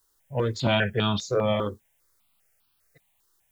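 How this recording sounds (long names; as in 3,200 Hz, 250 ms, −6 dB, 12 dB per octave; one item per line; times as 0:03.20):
a quantiser's noise floor 12 bits, dither triangular
notches that jump at a steady rate 5 Hz 640–2,000 Hz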